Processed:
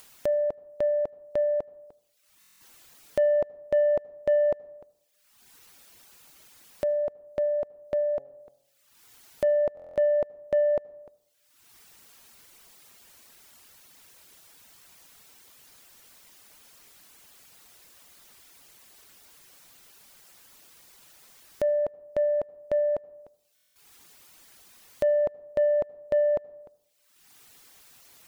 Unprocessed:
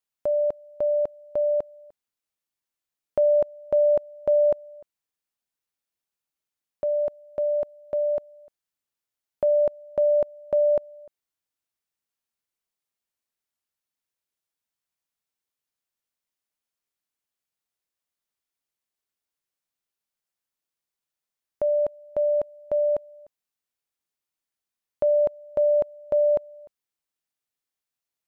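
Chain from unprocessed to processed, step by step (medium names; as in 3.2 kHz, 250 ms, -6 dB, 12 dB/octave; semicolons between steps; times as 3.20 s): reverb removal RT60 0.69 s; 8.17–9.57 s: de-hum 137.3 Hz, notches 6; upward compressor, threshold -27 dBFS; saturation -15.5 dBFS, distortion -24 dB; on a send at -22 dB: reverberation RT60 0.85 s, pre-delay 68 ms; on the sum: buffer glitch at 2.40/9.75/23.55 s, samples 1024, times 8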